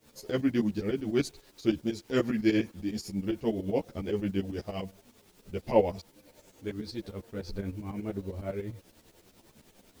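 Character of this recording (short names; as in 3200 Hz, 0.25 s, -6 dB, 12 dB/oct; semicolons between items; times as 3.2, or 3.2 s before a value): a quantiser's noise floor 10-bit, dither triangular; tremolo saw up 10 Hz, depth 85%; a shimmering, thickened sound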